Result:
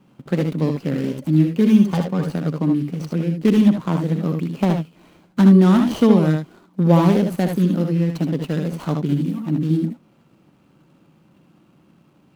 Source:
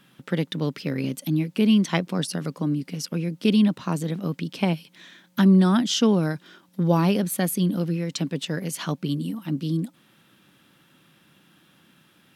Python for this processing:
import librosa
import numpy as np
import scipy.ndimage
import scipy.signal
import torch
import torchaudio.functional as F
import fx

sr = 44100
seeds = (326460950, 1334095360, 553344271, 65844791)

y = scipy.ndimage.median_filter(x, 25, mode='constant')
y = fx.notch_comb(y, sr, f0_hz=330.0, at=(1.58, 2.23))
y = fx.room_early_taps(y, sr, ms=(64, 77), db=(-9.5, -6.5))
y = y * librosa.db_to_amplitude(5.0)